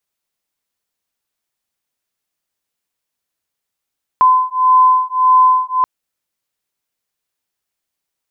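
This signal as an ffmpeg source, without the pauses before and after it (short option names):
-f lavfi -i "aevalsrc='0.266*(sin(2*PI*1020*t)+sin(2*PI*1021.7*t))':d=1.63:s=44100"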